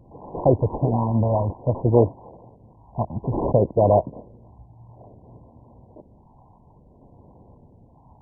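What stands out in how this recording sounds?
phasing stages 12, 0.58 Hz, lowest notch 410–2600 Hz; aliases and images of a low sample rate 1900 Hz, jitter 0%; MP2

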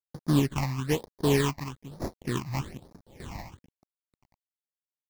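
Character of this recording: aliases and images of a low sample rate 1400 Hz, jitter 20%; random-step tremolo 2.5 Hz, depth 70%; a quantiser's noise floor 10-bit, dither none; phasing stages 8, 1.1 Hz, lowest notch 420–2900 Hz

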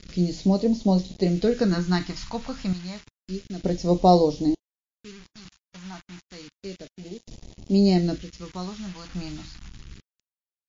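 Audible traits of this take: random-step tremolo 1.1 Hz, depth 95%; a quantiser's noise floor 8-bit, dither none; phasing stages 2, 0.3 Hz, lowest notch 420–1400 Hz; MP3

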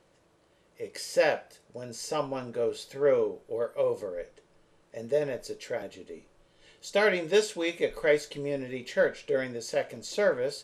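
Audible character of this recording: noise floor -65 dBFS; spectral tilt -3.5 dB/oct

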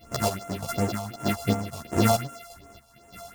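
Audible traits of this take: a buzz of ramps at a fixed pitch in blocks of 64 samples; phasing stages 4, 2.7 Hz, lowest notch 280–4400 Hz; chopped level 1.6 Hz, depth 65%, duty 45%; a shimmering, thickened sound

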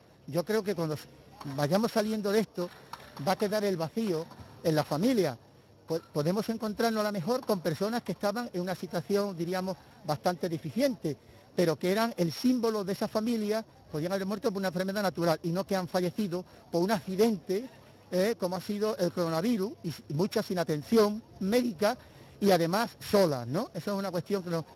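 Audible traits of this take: a buzz of ramps at a fixed pitch in blocks of 8 samples; Speex

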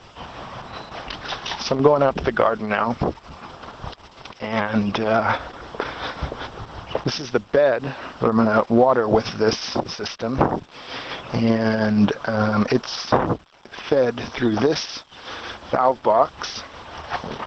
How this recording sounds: tremolo triangle 5.5 Hz, depth 50%; a quantiser's noise floor 10-bit, dither none; Opus

